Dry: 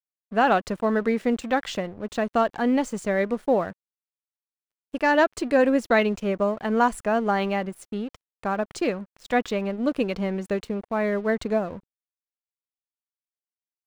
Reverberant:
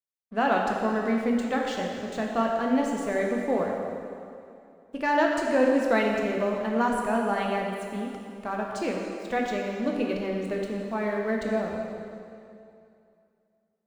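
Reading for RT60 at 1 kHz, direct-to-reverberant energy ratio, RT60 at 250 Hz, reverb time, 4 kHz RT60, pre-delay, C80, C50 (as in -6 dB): 2.5 s, -0.5 dB, 2.6 s, 2.6 s, 2.3 s, 11 ms, 2.5 dB, 1.5 dB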